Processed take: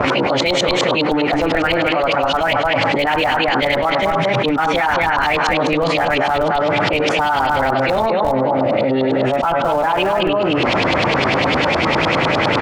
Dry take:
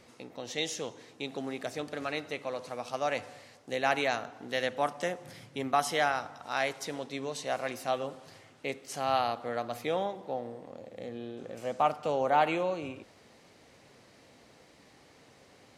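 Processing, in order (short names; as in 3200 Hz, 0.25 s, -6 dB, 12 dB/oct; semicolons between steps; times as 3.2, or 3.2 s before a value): pitch shift by moving bins -2 st; on a send: echo 0.279 s -7.5 dB; on the sum: LFO low-pass saw up 7.9 Hz 770–3100 Hz; in parallel at -11 dB: Schmitt trigger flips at -27 dBFS; on the sum: varispeed +25%; fast leveller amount 100%; gain +3.5 dB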